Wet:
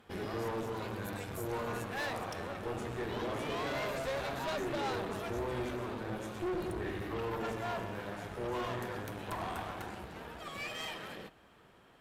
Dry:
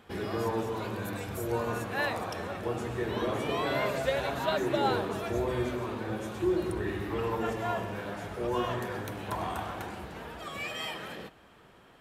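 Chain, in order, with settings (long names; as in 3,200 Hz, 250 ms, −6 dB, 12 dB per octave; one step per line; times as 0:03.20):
tube saturation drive 32 dB, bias 0.75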